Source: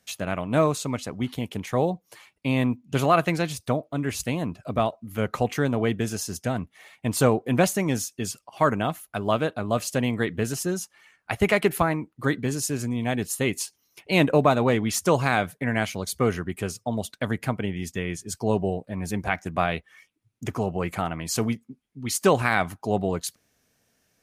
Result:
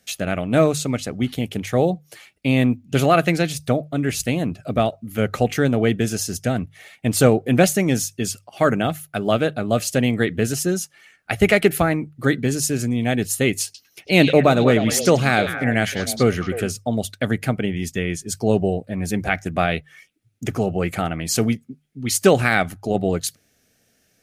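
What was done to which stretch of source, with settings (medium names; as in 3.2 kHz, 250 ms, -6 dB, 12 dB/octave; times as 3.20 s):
13.64–16.68 s: repeats whose band climbs or falls 103 ms, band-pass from 3.9 kHz, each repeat -1.4 oct, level -3.5 dB
22.63–23.06 s: AM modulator 83 Hz, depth 30%
whole clip: peaking EQ 1 kHz -14.5 dB 0.34 oct; hum notches 50/100/150 Hz; trim +6 dB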